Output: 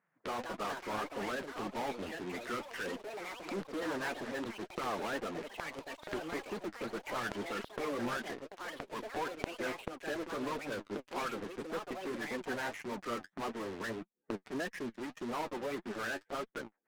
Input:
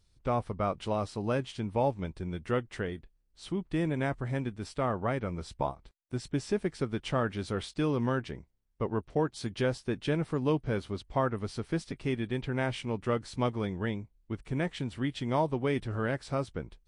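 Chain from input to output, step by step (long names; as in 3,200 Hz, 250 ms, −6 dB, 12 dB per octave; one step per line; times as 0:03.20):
spectral magnitudes quantised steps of 30 dB
elliptic band-pass filter 200–1,800 Hz, stop band 40 dB
spectral tilt +2.5 dB per octave
leveller curve on the samples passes 1
in parallel at −7 dB: fuzz pedal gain 47 dB, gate −50 dBFS
on the sum: gate with flip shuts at −31 dBFS, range −25 dB
flanger 1.7 Hz, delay 3.9 ms, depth 7.1 ms, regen +41%
gate with flip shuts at −32 dBFS, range −35 dB
delay with pitch and tempo change per echo 245 ms, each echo +5 semitones, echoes 3, each echo −6 dB
highs frequency-modulated by the lows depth 0.3 ms
level +10.5 dB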